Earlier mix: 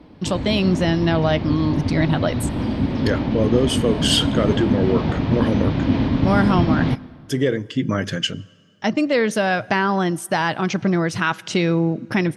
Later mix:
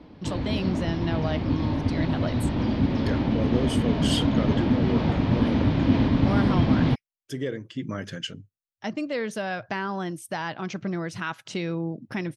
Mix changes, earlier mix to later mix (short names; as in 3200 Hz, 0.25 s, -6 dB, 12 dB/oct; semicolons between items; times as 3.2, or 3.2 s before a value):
speech -9.5 dB; reverb: off